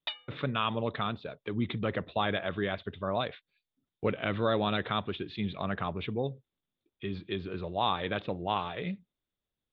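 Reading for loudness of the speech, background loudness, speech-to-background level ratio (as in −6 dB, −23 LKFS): −33.0 LKFS, −41.5 LKFS, 8.5 dB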